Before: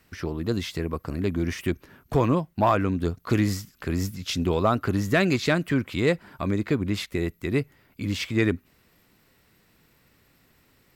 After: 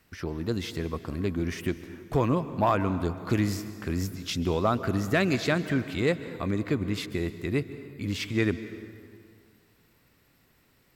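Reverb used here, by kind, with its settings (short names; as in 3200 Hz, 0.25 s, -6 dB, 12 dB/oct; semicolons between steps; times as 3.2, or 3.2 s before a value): plate-style reverb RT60 2.2 s, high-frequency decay 0.7×, pre-delay 0.12 s, DRR 12.5 dB; gain -3 dB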